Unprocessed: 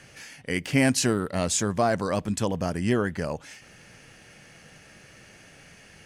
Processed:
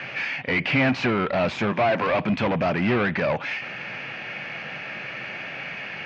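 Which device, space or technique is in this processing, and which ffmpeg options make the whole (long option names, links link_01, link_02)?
overdrive pedal into a guitar cabinet: -filter_complex "[0:a]asettb=1/sr,asplit=3[link_01][link_02][link_03];[link_01]atrim=end=1.724[link_04];[link_02]atrim=start=1.72:end=2.19,asetpts=PTS-STARTPTS,afade=type=in:duration=0.004:curve=qsin,afade=type=out:start_time=0.466:duration=0.004:curve=qsin,highpass=frequency=220:width=0.5412,highpass=frequency=220:width=1.3066[link_05];[link_03]atrim=start=2.186[link_06];[link_04][link_05]acrossfade=duration=0.004:curve1=hsin:curve2=qsin[link_07];[link_07][link_06]acrossfade=duration=0.004:curve1=qsin:curve2=hsin,asplit=2[link_08][link_09];[link_09]highpass=frequency=720:poles=1,volume=31dB,asoftclip=type=tanh:threshold=-9.5dB[link_10];[link_08][link_10]amix=inputs=2:normalize=0,lowpass=frequency=1200:poles=1,volume=-6dB,highpass=95,equalizer=frequency=130:width_type=q:width=4:gain=4,equalizer=frequency=310:width_type=q:width=4:gain=-3,equalizer=frequency=450:width_type=q:width=4:gain=-6,equalizer=frequency=2400:width_type=q:width=4:gain=9,lowpass=frequency=4300:width=0.5412,lowpass=frequency=4300:width=1.3066,volume=-2.5dB"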